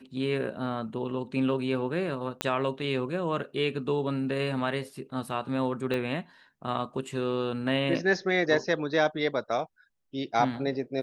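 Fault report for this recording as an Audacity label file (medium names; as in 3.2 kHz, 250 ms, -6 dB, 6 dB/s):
2.410000	2.410000	pop -12 dBFS
5.940000	5.940000	pop -19 dBFS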